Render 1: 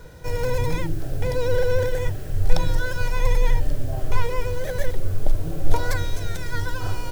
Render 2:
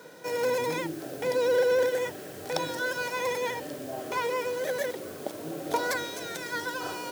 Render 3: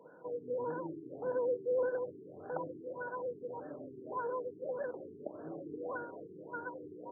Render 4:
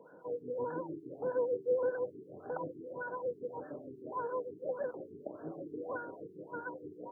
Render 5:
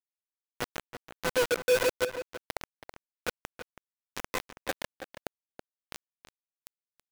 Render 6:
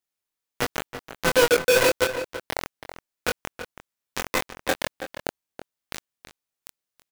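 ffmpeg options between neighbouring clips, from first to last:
-af "highpass=f=220:w=0.5412,highpass=f=220:w=1.3066"
-af "lowshelf=f=90:g=-9,afftfilt=real='re*lt(b*sr/1024,430*pow(1800/430,0.5+0.5*sin(2*PI*1.7*pts/sr)))':imag='im*lt(b*sr/1024,430*pow(1800/430,0.5+0.5*sin(2*PI*1.7*pts/sr)))':win_size=1024:overlap=0.75,volume=0.447"
-filter_complex "[0:a]acrossover=split=930[s0][s1];[s0]aeval=exprs='val(0)*(1-0.7/2+0.7/2*cos(2*PI*6.4*n/s))':c=same[s2];[s1]aeval=exprs='val(0)*(1-0.7/2-0.7/2*cos(2*PI*6.4*n/s))':c=same[s3];[s2][s3]amix=inputs=2:normalize=0,volume=1.58"
-filter_complex "[0:a]acrusher=bits=4:mix=0:aa=0.000001,asplit=2[s0][s1];[s1]adelay=326.5,volume=0.316,highshelf=f=4000:g=-7.35[s2];[s0][s2]amix=inputs=2:normalize=0,volume=1.5"
-filter_complex "[0:a]asplit=2[s0][s1];[s1]adelay=23,volume=0.668[s2];[s0][s2]amix=inputs=2:normalize=0,volume=2.37"

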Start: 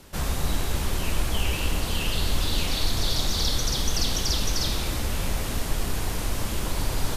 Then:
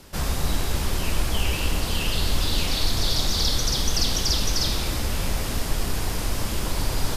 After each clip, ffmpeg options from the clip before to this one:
-af "equalizer=f=5000:t=o:w=0.24:g=4,volume=1.19"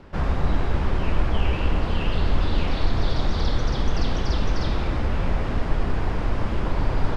-af "lowpass=1800,volume=1.41"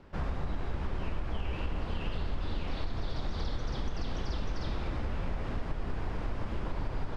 -af "acompressor=threshold=0.112:ratio=6,volume=0.376"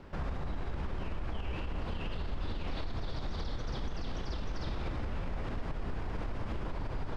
-af "alimiter=level_in=2.37:limit=0.0631:level=0:latency=1:release=95,volume=0.422,volume=1.58"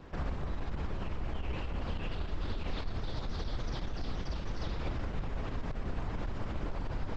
-af "volume=1.12" -ar 48000 -c:a libopus -b:a 10k

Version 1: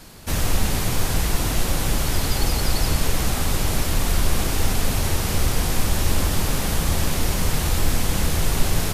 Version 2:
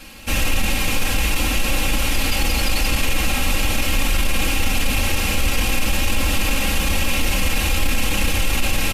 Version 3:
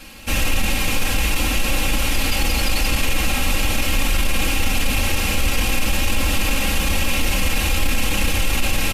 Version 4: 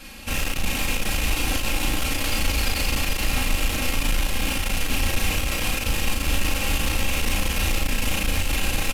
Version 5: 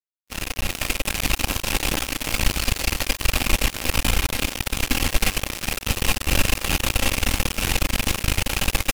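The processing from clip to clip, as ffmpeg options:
-af "equalizer=f=2600:t=o:w=0.54:g=12.5,aecho=1:1:3.7:0.77,alimiter=limit=0.335:level=0:latency=1:release=11"
-af anull
-filter_complex "[0:a]asoftclip=type=tanh:threshold=0.126,asplit=2[s0][s1];[s1]adelay=36,volume=0.75[s2];[s0][s2]amix=inputs=2:normalize=0,aecho=1:1:430:0.531,volume=0.75"
-af "acrusher=bits=2:mix=0:aa=0.5,volume=1.26"

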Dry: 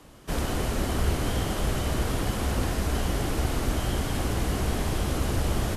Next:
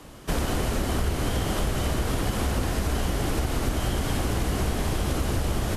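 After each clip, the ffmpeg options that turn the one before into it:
-af "acompressor=threshold=0.0447:ratio=6,volume=1.88"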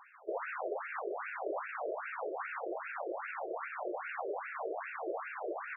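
-af "afftfilt=real='re*between(b*sr/1024,460*pow(2000/460,0.5+0.5*sin(2*PI*2.5*pts/sr))/1.41,460*pow(2000/460,0.5+0.5*sin(2*PI*2.5*pts/sr))*1.41)':imag='im*between(b*sr/1024,460*pow(2000/460,0.5+0.5*sin(2*PI*2.5*pts/sr))/1.41,460*pow(2000/460,0.5+0.5*sin(2*PI*2.5*pts/sr))*1.41)':win_size=1024:overlap=0.75,volume=0.891"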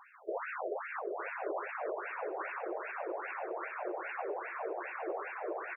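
-af "aecho=1:1:909|1818|2727:0.355|0.0674|0.0128"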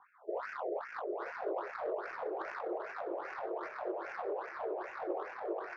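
-filter_complex "[0:a]flanger=delay=20:depth=5.8:speed=2,aeval=exprs='0.0422*(cos(1*acos(clip(val(0)/0.0422,-1,1)))-cos(1*PI/2))+0.000237*(cos(5*acos(clip(val(0)/0.0422,-1,1)))-cos(5*PI/2))':c=same,acrossover=split=300|710[s0][s1][s2];[s2]adynamicsmooth=sensitivity=4.5:basefreq=1100[s3];[s0][s1][s3]amix=inputs=3:normalize=0,volume=1.58"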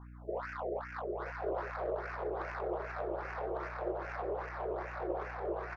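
-filter_complex "[0:a]aeval=exprs='val(0)+0.00355*(sin(2*PI*60*n/s)+sin(2*PI*2*60*n/s)/2+sin(2*PI*3*60*n/s)/3+sin(2*PI*4*60*n/s)/4+sin(2*PI*5*60*n/s)/5)':c=same,asplit=2[s0][s1];[s1]aecho=0:1:1152:0.501[s2];[s0][s2]amix=inputs=2:normalize=0"

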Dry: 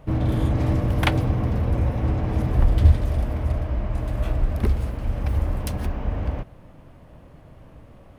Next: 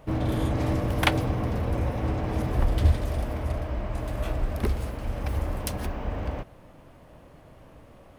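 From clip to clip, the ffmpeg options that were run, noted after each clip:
-af "bass=f=250:g=-6,treble=f=4000:g=3"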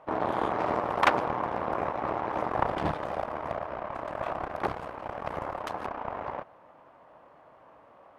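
-af "aeval=exprs='0.668*(cos(1*acos(clip(val(0)/0.668,-1,1)))-cos(1*PI/2))+0.211*(cos(8*acos(clip(val(0)/0.668,-1,1)))-cos(8*PI/2))':c=same,bandpass=f=990:t=q:w=1.5:csg=0,volume=1.58"

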